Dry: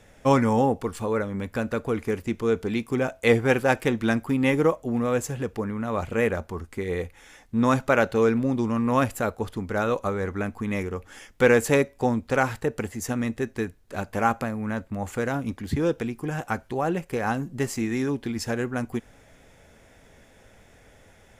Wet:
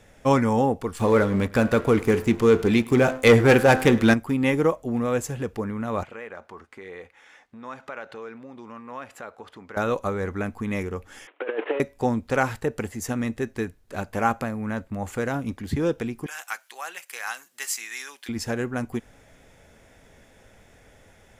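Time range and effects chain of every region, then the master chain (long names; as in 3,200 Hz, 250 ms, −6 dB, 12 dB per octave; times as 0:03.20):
0:00.99–0:04.14: hum removal 86.32 Hz, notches 23 + leveller curve on the samples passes 2 + single-tap delay 104 ms −22.5 dB
0:06.03–0:09.77: downward compressor 5 to 1, threshold −30 dBFS + resonant band-pass 1,400 Hz, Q 0.56
0:11.27–0:11.80: variable-slope delta modulation 16 kbit/s + Butterworth high-pass 310 Hz 48 dB per octave + compressor whose output falls as the input rises −25 dBFS, ratio −0.5
0:16.26–0:18.29: high-pass filter 1,300 Hz + spectral tilt +2.5 dB per octave
whole clip: no processing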